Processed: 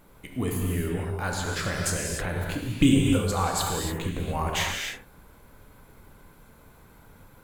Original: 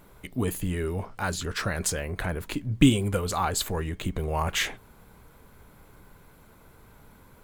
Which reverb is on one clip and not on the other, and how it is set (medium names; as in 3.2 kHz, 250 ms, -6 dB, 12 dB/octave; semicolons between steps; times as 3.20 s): gated-style reverb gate 320 ms flat, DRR -0.5 dB; trim -2.5 dB